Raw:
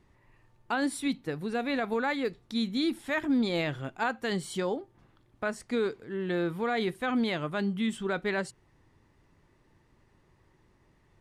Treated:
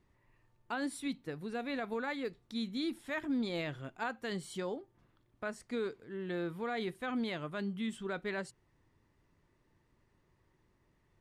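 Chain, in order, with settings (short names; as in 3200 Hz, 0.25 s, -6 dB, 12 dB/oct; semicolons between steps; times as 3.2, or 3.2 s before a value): notch 810 Hz, Q 21; gain -7.5 dB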